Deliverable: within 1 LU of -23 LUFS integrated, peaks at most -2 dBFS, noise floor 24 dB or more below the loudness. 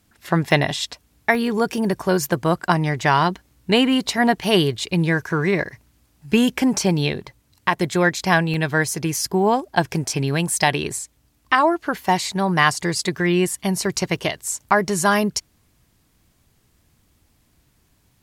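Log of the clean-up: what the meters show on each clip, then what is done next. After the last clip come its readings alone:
dropouts 6; longest dropout 1.1 ms; loudness -20.5 LUFS; peak level -2.0 dBFS; loudness target -23.0 LUFS
-> interpolate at 0.51/1.35/4.44/8.54/13.48/14.16 s, 1.1 ms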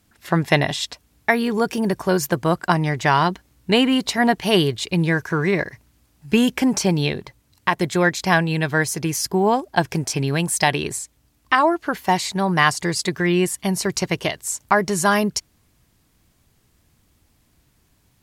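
dropouts 0; loudness -20.5 LUFS; peak level -2.0 dBFS; loudness target -23.0 LUFS
-> trim -2.5 dB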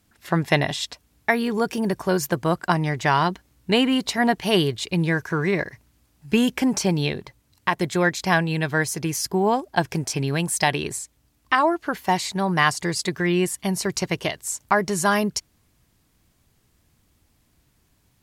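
loudness -23.0 LUFS; peak level -4.5 dBFS; noise floor -65 dBFS

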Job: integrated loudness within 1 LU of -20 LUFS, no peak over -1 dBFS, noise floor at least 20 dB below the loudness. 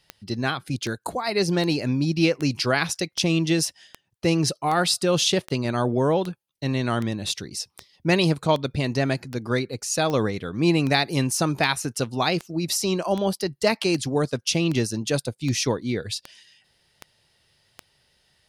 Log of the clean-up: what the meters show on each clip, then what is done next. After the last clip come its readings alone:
clicks found 24; loudness -24.0 LUFS; peak level -6.0 dBFS; loudness target -20.0 LUFS
-> de-click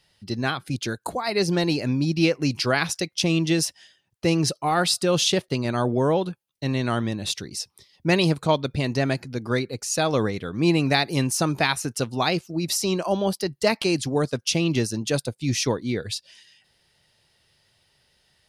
clicks found 0; loudness -24.0 LUFS; peak level -6.0 dBFS; loudness target -20.0 LUFS
-> trim +4 dB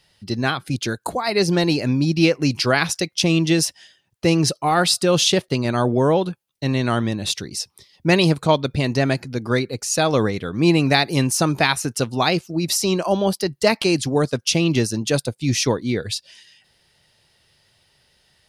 loudness -20.0 LUFS; peak level -2.0 dBFS; noise floor -63 dBFS

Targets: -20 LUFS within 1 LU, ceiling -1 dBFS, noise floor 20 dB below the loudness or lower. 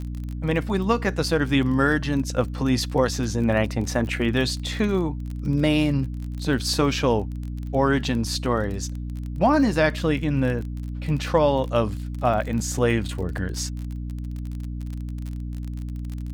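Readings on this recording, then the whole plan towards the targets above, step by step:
tick rate 30 per s; hum 60 Hz; highest harmonic 300 Hz; hum level -28 dBFS; loudness -24.5 LUFS; peak level -6.0 dBFS; loudness target -20.0 LUFS
-> de-click; hum notches 60/120/180/240/300 Hz; trim +4.5 dB

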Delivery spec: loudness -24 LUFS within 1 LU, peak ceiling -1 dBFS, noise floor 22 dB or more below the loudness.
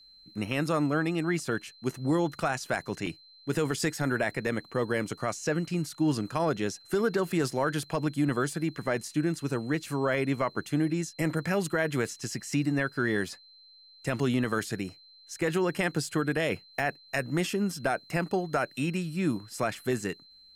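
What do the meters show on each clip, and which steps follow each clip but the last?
dropouts 3; longest dropout 4.0 ms; steady tone 4.1 kHz; tone level -53 dBFS; loudness -30.0 LUFS; peak level -16.0 dBFS; loudness target -24.0 LUFS
-> interpolate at 3.06/15.41/16.79 s, 4 ms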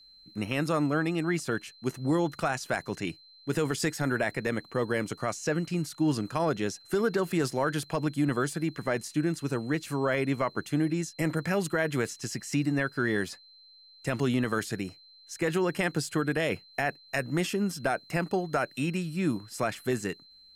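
dropouts 0; steady tone 4.1 kHz; tone level -53 dBFS
-> band-stop 4.1 kHz, Q 30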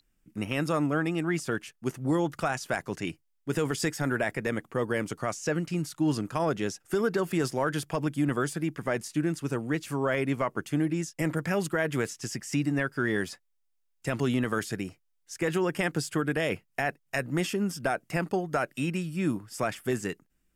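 steady tone not found; loudness -30.0 LUFS; peak level -15.5 dBFS; loudness target -24.0 LUFS
-> trim +6 dB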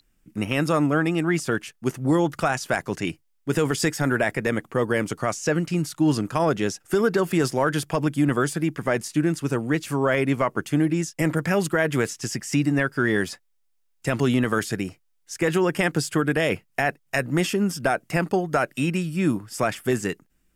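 loudness -24.0 LUFS; peak level -9.5 dBFS; noise floor -67 dBFS

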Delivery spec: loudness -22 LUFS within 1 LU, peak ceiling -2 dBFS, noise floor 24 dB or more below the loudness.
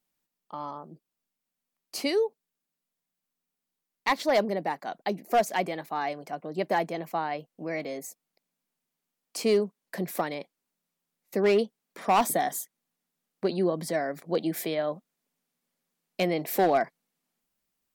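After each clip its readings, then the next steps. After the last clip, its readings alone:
clipped samples 0.3%; clipping level -16.0 dBFS; loudness -29.0 LUFS; peak level -16.0 dBFS; loudness target -22.0 LUFS
-> clip repair -16 dBFS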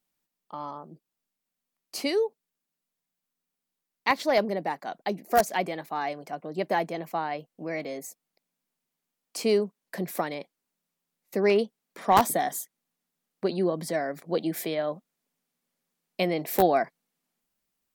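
clipped samples 0.0%; loudness -28.0 LUFS; peak level -7.0 dBFS; loudness target -22.0 LUFS
-> trim +6 dB; peak limiter -2 dBFS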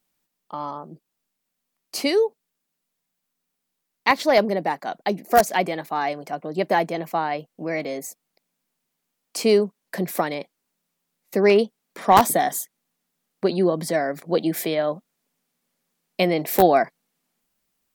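loudness -22.5 LUFS; peak level -2.0 dBFS; noise floor -80 dBFS

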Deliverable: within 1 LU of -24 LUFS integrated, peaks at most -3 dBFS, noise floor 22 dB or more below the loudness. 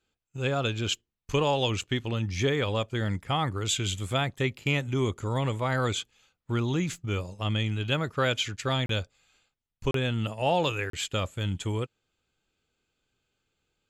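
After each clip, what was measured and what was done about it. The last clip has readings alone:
dropouts 3; longest dropout 33 ms; loudness -29.0 LUFS; peak level -10.5 dBFS; loudness target -24.0 LUFS
-> interpolate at 8.86/9.91/10.90 s, 33 ms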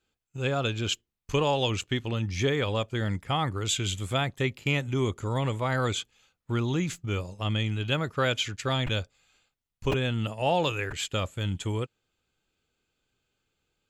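dropouts 0; loudness -29.0 LUFS; peak level -10.5 dBFS; loudness target -24.0 LUFS
-> trim +5 dB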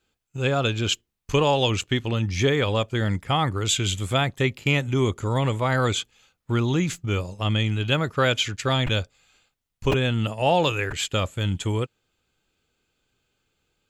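loudness -24.0 LUFS; peak level -5.5 dBFS; noise floor -80 dBFS

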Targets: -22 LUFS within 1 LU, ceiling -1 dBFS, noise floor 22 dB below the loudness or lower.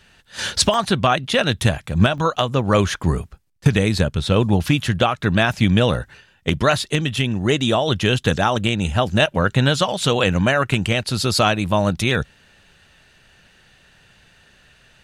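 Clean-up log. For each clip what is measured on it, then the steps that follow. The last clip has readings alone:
dropouts 3; longest dropout 2.1 ms; loudness -19.0 LUFS; peak level -4.0 dBFS; loudness target -22.0 LUFS
-> interpolate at 0.74/2.18/9.26 s, 2.1 ms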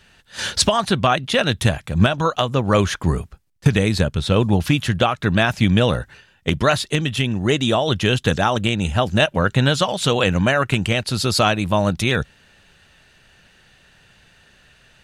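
dropouts 0; loudness -19.0 LUFS; peak level -4.0 dBFS; loudness target -22.0 LUFS
-> trim -3 dB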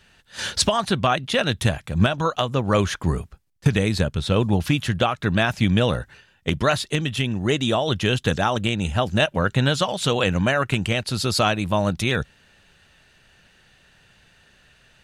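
loudness -22.0 LUFS; peak level -7.0 dBFS; noise floor -59 dBFS

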